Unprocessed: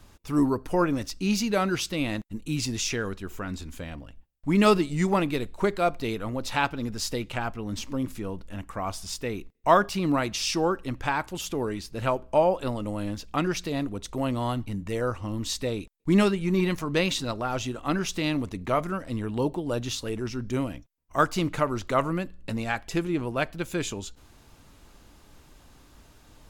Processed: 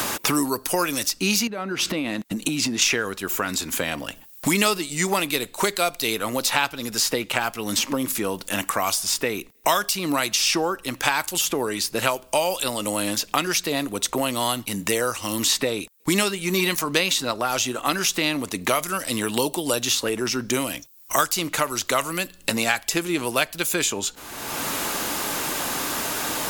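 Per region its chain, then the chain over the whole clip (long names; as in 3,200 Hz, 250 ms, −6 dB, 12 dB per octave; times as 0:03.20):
0:01.47–0:02.82: low-pass filter 3,500 Hz 6 dB per octave + parametric band 240 Hz +7.5 dB 1.1 octaves + downward compressor 16 to 1, threshold −34 dBFS
whole clip: RIAA equalisation recording; multiband upward and downward compressor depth 100%; level +5 dB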